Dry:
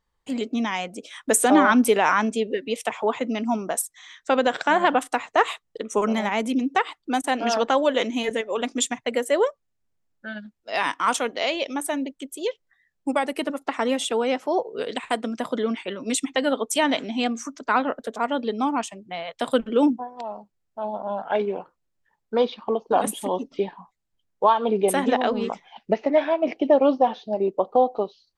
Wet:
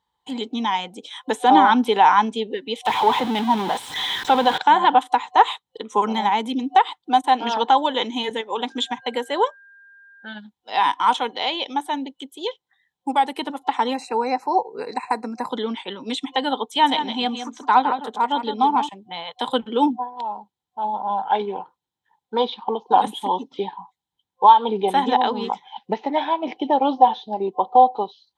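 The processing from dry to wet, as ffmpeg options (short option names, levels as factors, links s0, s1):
-filter_complex "[0:a]asettb=1/sr,asplit=3[s0][s1][s2];[s0]atrim=end=2.864[s3];[s1]atrim=start=2.86:end=4.58,asetpts=PTS-STARTPTS,afade=t=in:d=0.004:c=qsin,afade=t=out:st=1.716:d=0.004:c=qsin,aeval=exprs='val(0)+0.5*0.0794*sgn(val(0))':c=same[s4];[s2]atrim=start=4.576[s5];[s3][s4]acrossfade=d=0.004:c1=hsin:c2=qsin[s6];[s6][s5]acrossfade=d=0.004:c1=qsin:c2=hsin,asettb=1/sr,asplit=3[s7][s8][s9];[s7]atrim=end=8.704[s10];[s8]atrim=start=8.7:end=10.27,asetpts=PTS-STARTPTS,afade=t=in:d=0.004:c=qsin,afade=t=out:st=1.566:d=0.004:c=qsin,aeval=exprs='val(0)+0.00562*sin(2*PI*1600*n/s)':c=same[s11];[s9]atrim=start=10.266[s12];[s10][s11]acrossfade=d=0.004:c1=hsin:c2=qsin[s13];[s13][s12]acrossfade=d=0.004:c1=qsin:c2=hsin,asplit=3[s14][s15][s16];[s14]afade=t=out:st=13.93:d=0.02[s17];[s15]asuperstop=centerf=3300:order=20:qfactor=2.7,afade=t=in:st=13.93:d=0.02,afade=t=out:st=15.49:d=0.02[s18];[s16]afade=t=in:st=15.49:d=0.02[s19];[s17][s18][s19]amix=inputs=3:normalize=0,asettb=1/sr,asplit=3[s20][s21][s22];[s20]atrim=end=16.644[s23];[s21]atrim=start=16.64:end=18.89,asetpts=PTS-STARTPTS,afade=t=in:d=0.004:c=qsin,afade=t=out:st=2.246:d=0.004:c=qsin,aecho=1:1:161:0.355,atrim=end_sample=99225[s24];[s22]atrim=start=18.886[s25];[s23][s24]acrossfade=d=0.004:c1=hsin:c2=qsin[s26];[s26][s25]acrossfade=d=0.004:c1=qsin:c2=hsin,highpass=87,acrossover=split=4300[s27][s28];[s28]acompressor=threshold=0.00708:ratio=4:attack=1:release=60[s29];[s27][s29]amix=inputs=2:normalize=0,superequalizer=8b=0.562:9b=3.55:13b=2.82,volume=0.841"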